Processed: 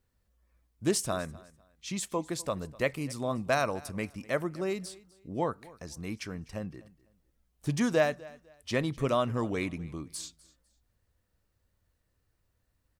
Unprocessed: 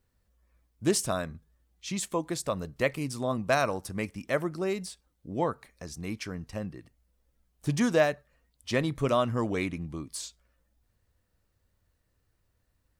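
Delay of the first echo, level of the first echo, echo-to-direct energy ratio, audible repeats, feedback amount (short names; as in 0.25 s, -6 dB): 0.251 s, -21.5 dB, -21.0 dB, 2, 25%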